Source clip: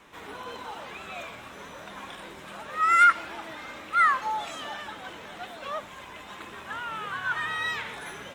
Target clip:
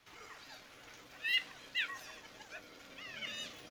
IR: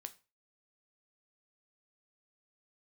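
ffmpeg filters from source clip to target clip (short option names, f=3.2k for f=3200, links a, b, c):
-filter_complex "[0:a]atempo=1.3,asubboost=boost=10:cutoff=95,aeval=exprs='val(0)*sin(2*PI*230*n/s)':c=same[a];[1:a]atrim=start_sample=2205[b];[a][b]afir=irnorm=-1:irlink=0,asetrate=76440,aresample=44100,volume=-5.5dB"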